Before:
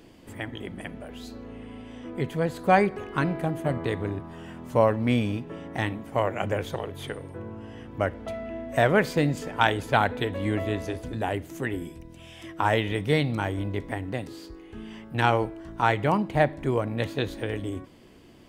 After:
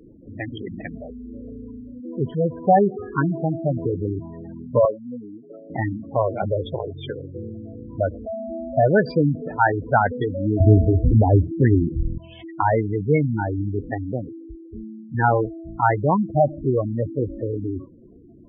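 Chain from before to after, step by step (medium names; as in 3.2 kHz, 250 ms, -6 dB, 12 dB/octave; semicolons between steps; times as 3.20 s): spectral gate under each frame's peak -10 dB strong; 4.85–5.70 s: high-pass 550 Hz 12 dB/octave; 10.60–12.18 s: tilt EQ -4.5 dB/octave; trim +5.5 dB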